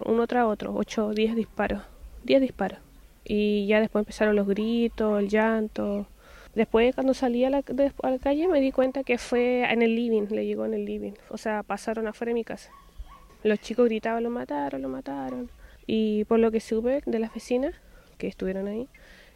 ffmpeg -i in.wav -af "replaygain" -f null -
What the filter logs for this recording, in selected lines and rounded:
track_gain = +5.7 dB
track_peak = 0.262